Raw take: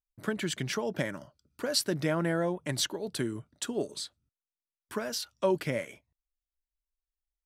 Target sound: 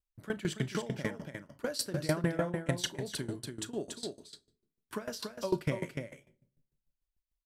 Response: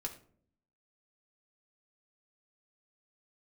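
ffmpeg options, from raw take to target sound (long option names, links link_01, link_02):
-filter_complex "[0:a]lowshelf=frequency=98:gain=11,aecho=1:1:284:0.501,asplit=2[link_01][link_02];[1:a]atrim=start_sample=2205,asetrate=31311,aresample=44100,adelay=34[link_03];[link_02][link_03]afir=irnorm=-1:irlink=0,volume=-12.5dB[link_04];[link_01][link_04]amix=inputs=2:normalize=0,aeval=exprs='val(0)*pow(10,-19*if(lt(mod(6.7*n/s,1),2*abs(6.7)/1000),1-mod(6.7*n/s,1)/(2*abs(6.7)/1000),(mod(6.7*n/s,1)-2*abs(6.7)/1000)/(1-2*abs(6.7)/1000))/20)':channel_layout=same,volume=1dB"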